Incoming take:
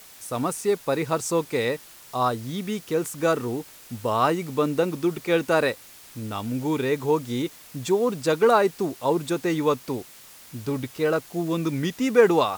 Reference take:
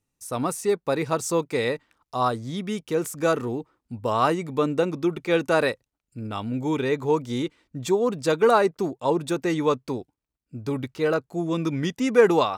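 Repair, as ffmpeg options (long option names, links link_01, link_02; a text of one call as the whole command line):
ffmpeg -i in.wav -af "afftdn=noise_reduction=29:noise_floor=-47" out.wav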